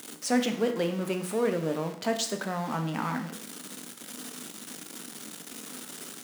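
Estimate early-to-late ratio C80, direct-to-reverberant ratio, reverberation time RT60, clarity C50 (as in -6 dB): 13.5 dB, 5.5 dB, 0.60 s, 10.0 dB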